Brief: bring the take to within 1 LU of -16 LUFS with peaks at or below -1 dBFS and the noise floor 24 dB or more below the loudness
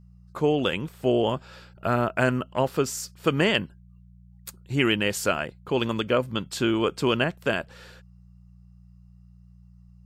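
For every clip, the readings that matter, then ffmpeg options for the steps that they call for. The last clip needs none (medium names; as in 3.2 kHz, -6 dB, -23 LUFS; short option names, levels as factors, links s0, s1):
hum 60 Hz; highest harmonic 180 Hz; hum level -49 dBFS; loudness -25.5 LUFS; peak level -7.5 dBFS; loudness target -16.0 LUFS
-> -af "bandreject=f=60:t=h:w=4,bandreject=f=120:t=h:w=4,bandreject=f=180:t=h:w=4"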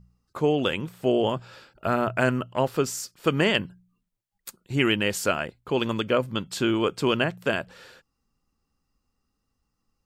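hum not found; loudness -25.5 LUFS; peak level -7.5 dBFS; loudness target -16.0 LUFS
-> -af "volume=2.99,alimiter=limit=0.891:level=0:latency=1"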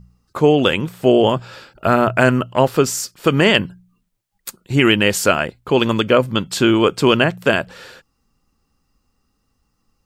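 loudness -16.5 LUFS; peak level -1.0 dBFS; noise floor -69 dBFS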